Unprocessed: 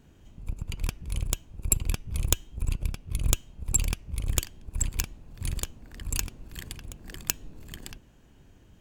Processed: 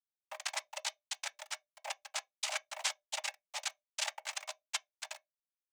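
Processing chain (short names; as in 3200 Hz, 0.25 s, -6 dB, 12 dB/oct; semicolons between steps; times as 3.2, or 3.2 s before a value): reverse; compressor 8:1, threshold -36 dBFS, peak gain reduction 19.5 dB; reverse; plain phase-vocoder stretch 0.65×; companded quantiser 2-bit; noise vocoder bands 4; bit-crush 10-bit; rippled Chebyshev high-pass 580 Hz, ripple 3 dB; on a send: reverb RT60 0.20 s, pre-delay 3 ms, DRR 10 dB; on the sum: gain +4 dB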